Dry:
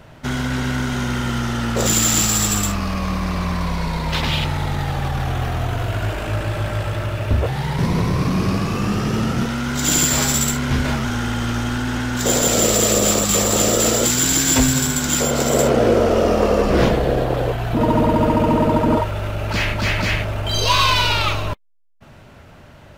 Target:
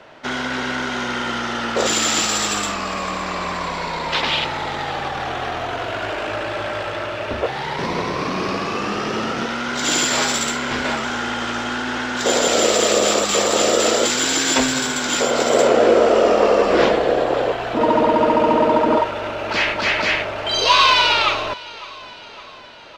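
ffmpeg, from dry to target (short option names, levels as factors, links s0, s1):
-filter_complex "[0:a]acrossover=split=290 6300:gain=0.0891 1 0.0794[s0][s1][s2];[s0][s1][s2]amix=inputs=3:normalize=0,aecho=1:1:560|1120|1680|2240|2800:0.106|0.0614|0.0356|0.0207|0.012,volume=1.5"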